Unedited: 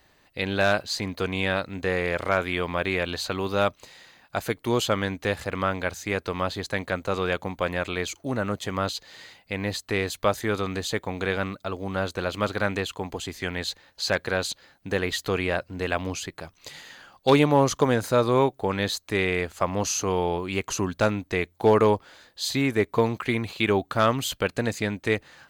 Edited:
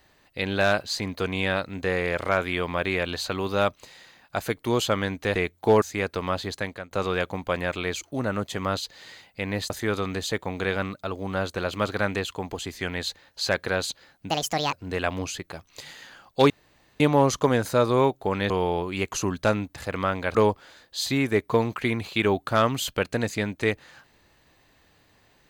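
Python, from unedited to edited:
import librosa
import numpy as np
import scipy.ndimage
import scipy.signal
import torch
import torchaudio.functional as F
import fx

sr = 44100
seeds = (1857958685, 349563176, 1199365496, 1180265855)

y = fx.edit(x, sr, fx.swap(start_s=5.35, length_s=0.59, other_s=21.32, other_length_s=0.47),
    fx.fade_out_to(start_s=6.66, length_s=0.37, floor_db=-20.5),
    fx.cut(start_s=9.82, length_s=0.49),
    fx.speed_span(start_s=14.91, length_s=0.7, speed=1.63),
    fx.insert_room_tone(at_s=17.38, length_s=0.5),
    fx.cut(start_s=18.88, length_s=1.18), tone=tone)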